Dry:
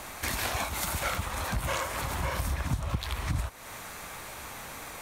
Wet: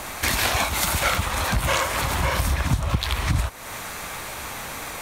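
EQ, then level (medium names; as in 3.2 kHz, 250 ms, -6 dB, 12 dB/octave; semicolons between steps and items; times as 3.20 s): dynamic bell 3.4 kHz, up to +3 dB, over -45 dBFS, Q 0.73; +8.0 dB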